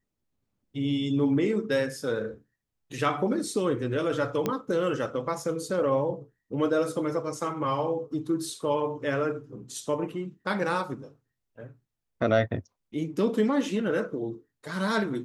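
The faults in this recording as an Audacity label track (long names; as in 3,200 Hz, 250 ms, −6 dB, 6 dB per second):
4.460000	4.460000	click −13 dBFS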